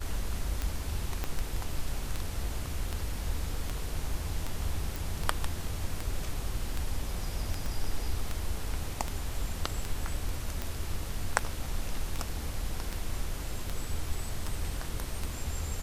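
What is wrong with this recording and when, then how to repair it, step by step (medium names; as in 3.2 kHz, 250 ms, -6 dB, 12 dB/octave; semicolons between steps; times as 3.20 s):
tick 78 rpm -18 dBFS
1.24 s: pop -17 dBFS
4.96 s: pop
7.66 s: pop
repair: de-click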